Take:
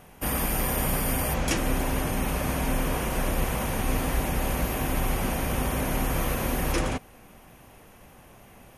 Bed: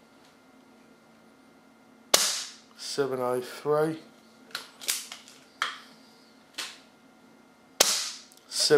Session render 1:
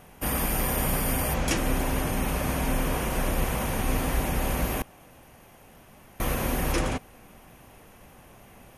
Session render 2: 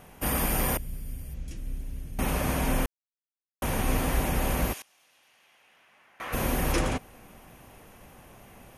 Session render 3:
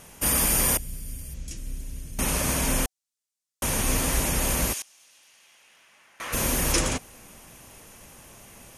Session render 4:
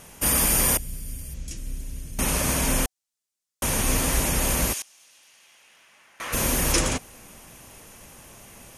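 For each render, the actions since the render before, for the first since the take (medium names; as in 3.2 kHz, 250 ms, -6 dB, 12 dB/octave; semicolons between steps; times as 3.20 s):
4.82–6.20 s: room tone
0.77–2.19 s: amplifier tone stack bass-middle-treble 10-0-1; 2.86–3.62 s: mute; 4.72–6.32 s: band-pass filter 5.9 kHz -> 1.5 kHz, Q 1.1
peaking EQ 7.2 kHz +13.5 dB 1.8 oct; band-stop 750 Hz, Q 16
trim +1.5 dB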